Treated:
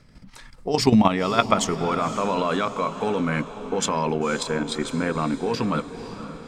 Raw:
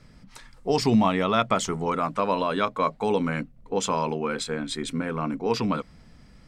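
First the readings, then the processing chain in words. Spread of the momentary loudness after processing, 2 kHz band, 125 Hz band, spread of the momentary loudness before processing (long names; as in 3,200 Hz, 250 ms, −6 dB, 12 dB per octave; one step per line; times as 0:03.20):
10 LU, +3.0 dB, +3.0 dB, 9 LU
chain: output level in coarse steps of 10 dB
feedback delay with all-pass diffusion 531 ms, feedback 51%, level −12 dB
level +6.5 dB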